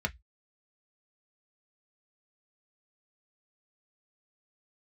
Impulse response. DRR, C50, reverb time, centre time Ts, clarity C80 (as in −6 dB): 3.0 dB, 26.5 dB, 0.10 s, 4 ms, 39.5 dB